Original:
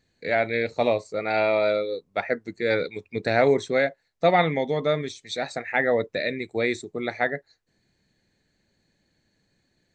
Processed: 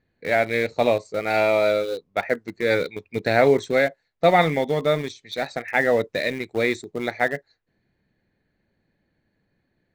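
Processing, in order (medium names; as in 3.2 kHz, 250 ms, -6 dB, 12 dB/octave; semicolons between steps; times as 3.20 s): level-controlled noise filter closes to 2.2 kHz, open at -20.5 dBFS; in parallel at -9 dB: small samples zeroed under -26.5 dBFS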